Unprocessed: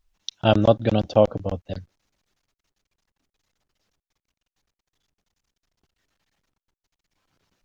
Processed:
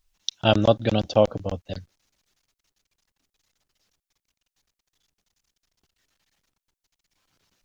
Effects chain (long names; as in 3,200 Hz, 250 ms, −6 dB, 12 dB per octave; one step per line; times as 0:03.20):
high-shelf EQ 2,500 Hz +8.5 dB
level −2 dB